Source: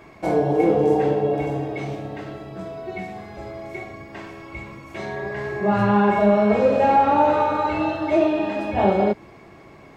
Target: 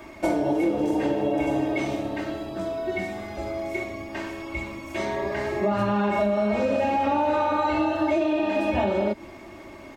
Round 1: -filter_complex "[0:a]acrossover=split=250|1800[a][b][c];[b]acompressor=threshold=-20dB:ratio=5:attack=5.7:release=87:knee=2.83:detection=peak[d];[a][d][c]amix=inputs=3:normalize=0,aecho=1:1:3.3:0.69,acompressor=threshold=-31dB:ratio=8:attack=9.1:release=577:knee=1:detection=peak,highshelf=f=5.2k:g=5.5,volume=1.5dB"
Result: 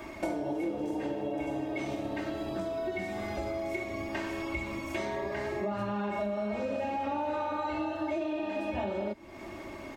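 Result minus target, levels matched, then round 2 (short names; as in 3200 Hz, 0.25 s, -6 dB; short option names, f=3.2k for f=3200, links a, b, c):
compressor: peak gain reduction +9.5 dB
-filter_complex "[0:a]acrossover=split=250|1800[a][b][c];[b]acompressor=threshold=-20dB:ratio=5:attack=5.7:release=87:knee=2.83:detection=peak[d];[a][d][c]amix=inputs=3:normalize=0,aecho=1:1:3.3:0.69,acompressor=threshold=-20dB:ratio=8:attack=9.1:release=577:knee=1:detection=peak,highshelf=f=5.2k:g=5.5,volume=1.5dB"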